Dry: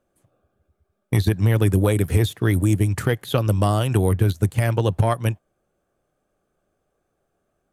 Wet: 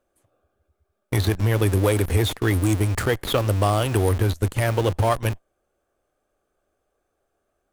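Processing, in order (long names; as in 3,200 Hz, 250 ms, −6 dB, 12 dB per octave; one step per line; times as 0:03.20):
parametric band 160 Hz −12 dB 1 octave
in parallel at −4.5 dB: comparator with hysteresis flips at −32 dBFS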